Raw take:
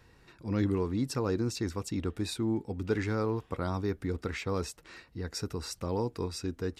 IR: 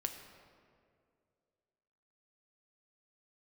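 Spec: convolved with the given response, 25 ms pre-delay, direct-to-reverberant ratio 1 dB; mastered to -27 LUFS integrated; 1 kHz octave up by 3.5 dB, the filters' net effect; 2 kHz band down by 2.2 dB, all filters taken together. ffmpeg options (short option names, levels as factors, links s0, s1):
-filter_complex "[0:a]equalizer=f=1000:t=o:g=5.5,equalizer=f=2000:t=o:g=-5,asplit=2[s0][s1];[1:a]atrim=start_sample=2205,adelay=25[s2];[s1][s2]afir=irnorm=-1:irlink=0,volume=0.891[s3];[s0][s3]amix=inputs=2:normalize=0,volume=1.5"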